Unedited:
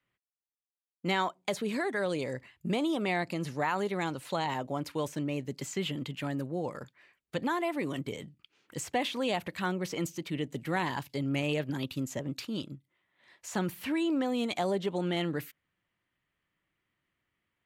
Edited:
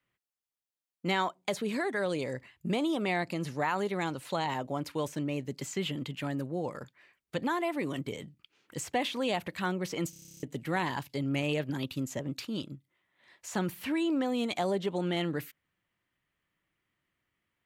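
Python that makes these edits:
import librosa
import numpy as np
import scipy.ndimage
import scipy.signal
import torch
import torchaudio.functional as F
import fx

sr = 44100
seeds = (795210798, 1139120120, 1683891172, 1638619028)

y = fx.edit(x, sr, fx.stutter_over(start_s=10.1, slice_s=0.03, count=11), tone=tone)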